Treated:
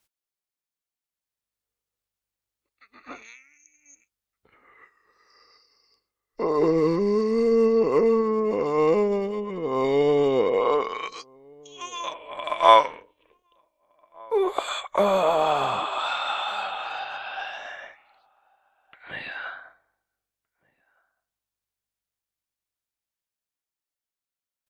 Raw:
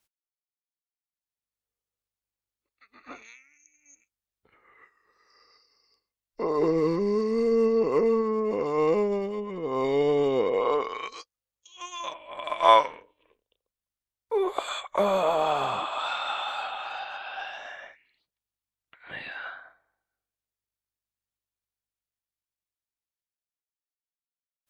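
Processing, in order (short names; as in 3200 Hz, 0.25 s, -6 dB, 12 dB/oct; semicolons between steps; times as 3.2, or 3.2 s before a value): outdoor echo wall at 260 m, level -28 dB; gain +3 dB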